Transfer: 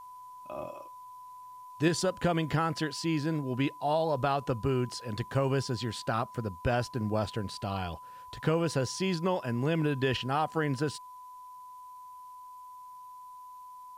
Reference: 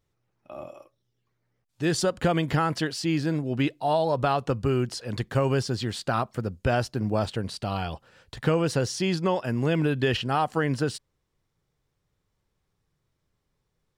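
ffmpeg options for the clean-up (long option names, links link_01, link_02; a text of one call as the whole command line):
ffmpeg -i in.wav -af "bandreject=frequency=1000:width=30,agate=range=-21dB:threshold=-40dB,asetnsamples=nb_out_samples=441:pad=0,asendcmd='1.88 volume volume 4.5dB',volume=0dB" out.wav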